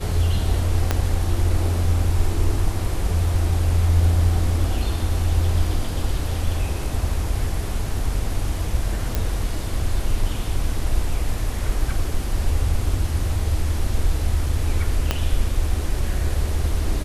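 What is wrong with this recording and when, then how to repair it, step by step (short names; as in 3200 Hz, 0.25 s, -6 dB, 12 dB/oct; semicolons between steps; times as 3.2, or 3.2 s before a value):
0.91 pop -5 dBFS
9.15 pop
15.11 pop -5 dBFS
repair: de-click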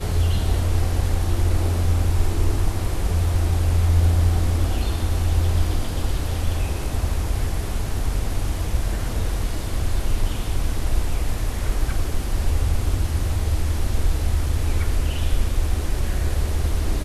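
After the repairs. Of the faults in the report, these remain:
0.91 pop
15.11 pop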